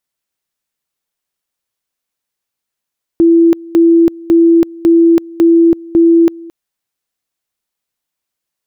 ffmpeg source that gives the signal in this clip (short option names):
-f lavfi -i "aevalsrc='pow(10,(-4-23*gte(mod(t,0.55),0.33))/20)*sin(2*PI*334*t)':d=3.3:s=44100"